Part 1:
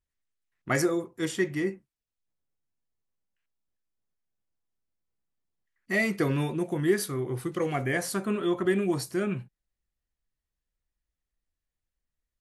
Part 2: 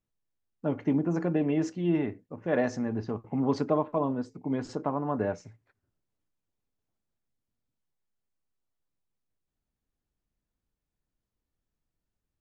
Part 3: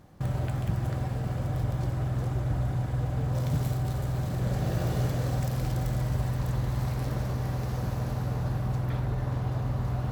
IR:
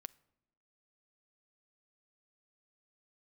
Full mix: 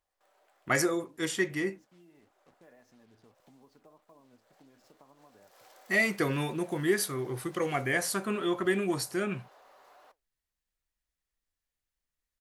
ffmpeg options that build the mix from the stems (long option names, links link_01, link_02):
-filter_complex "[0:a]volume=2dB[link_01];[1:a]acrusher=bits=6:mix=0:aa=0.5,adelay=150,volume=-13.5dB[link_02];[2:a]highpass=frequency=460:width=0.5412,highpass=frequency=460:width=1.3066,asoftclip=type=tanh:threshold=-32dB,volume=-7.5dB,afade=type=in:start_time=5.08:duration=0.46:silence=0.251189[link_03];[link_02][link_03]amix=inputs=2:normalize=0,flanger=delay=2.8:depth=6.3:regen=78:speed=1.7:shape=sinusoidal,acompressor=threshold=-51dB:ratio=10,volume=0dB[link_04];[link_01][link_04]amix=inputs=2:normalize=0,lowshelf=frequency=500:gain=-7.5"